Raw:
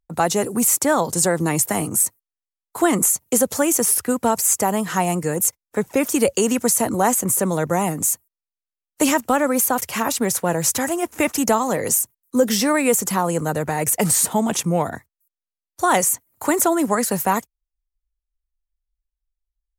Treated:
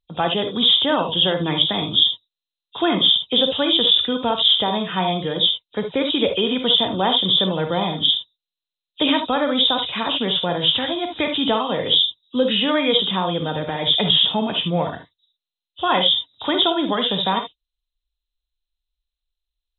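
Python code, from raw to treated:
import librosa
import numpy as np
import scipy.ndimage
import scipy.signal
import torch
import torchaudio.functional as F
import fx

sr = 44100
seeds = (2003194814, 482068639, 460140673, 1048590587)

y = fx.freq_compress(x, sr, knee_hz=2400.0, ratio=4.0)
y = fx.rev_gated(y, sr, seeds[0], gate_ms=90, shape='rising', drr_db=5.5)
y = y * 10.0 ** (-3.0 / 20.0)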